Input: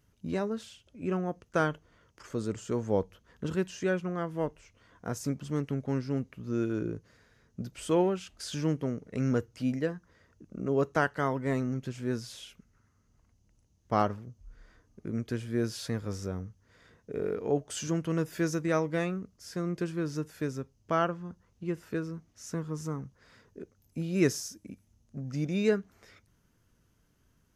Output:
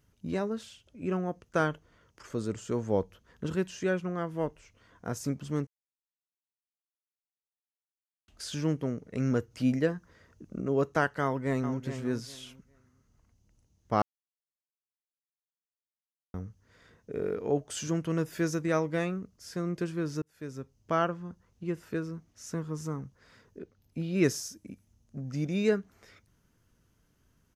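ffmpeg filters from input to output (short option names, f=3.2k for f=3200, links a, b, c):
-filter_complex "[0:a]asplit=2[a][b];[b]afade=t=in:st=11.22:d=0.01,afade=t=out:st=11.79:d=0.01,aecho=0:1:410|820|1230:0.316228|0.0632456|0.0126491[c];[a][c]amix=inputs=2:normalize=0,asettb=1/sr,asplit=3[d][e][f];[d]atrim=end=23.594[g];[e]atrim=start=23.59:end=24.24,asetpts=PTS-STARTPTS,afade=t=in:d=0.004:c=qsin,afade=t=out:st=0.646:d=0.004:c=qsin,highshelf=f=5.3k:t=q:w=1.5:g=-6.5[h];[f]atrim=start=24.236[i];[g][h]acrossfade=d=0.004:c1=hsin:c2=qsin[j];[j][i]acrossfade=d=0.004:c1=qsin:c2=hsin,asplit=8[k][l][m][n][o][p][q][r];[k]atrim=end=5.67,asetpts=PTS-STARTPTS,afade=t=out:st=5.666:d=0.004:c=hsin[s];[l]atrim=start=5.67:end=8.28,asetpts=PTS-STARTPTS,volume=0[t];[m]atrim=start=8.28:end=9.512,asetpts=PTS-STARTPTS,afade=t=in:d=0.004:c=hsin[u];[n]atrim=start=9.508:end=10.612,asetpts=PTS-STARTPTS,volume=3.5dB[v];[o]atrim=start=10.608:end=14.02,asetpts=PTS-STARTPTS,afade=t=out:st=3.408:d=0.004:c=hsin[w];[p]atrim=start=14.02:end=16.34,asetpts=PTS-STARTPTS,volume=0[x];[q]atrim=start=16.34:end=20.22,asetpts=PTS-STARTPTS,afade=t=in:d=0.004:c=hsin,afade=t=out:st=3.876:d=0.004:c=hsin[y];[r]atrim=start=20.22,asetpts=PTS-STARTPTS,afade=t=in:d=0.55[z];[s][t][u]concat=n=3:v=0:a=1[aa];[aa][v]acrossfade=d=0.004:c1=hsin:c2=hsin[ab];[w][x][y][z]concat=n=4:v=0:a=1[ac];[ab][ac]acrossfade=d=0.004:c1=hsin:c2=hsin"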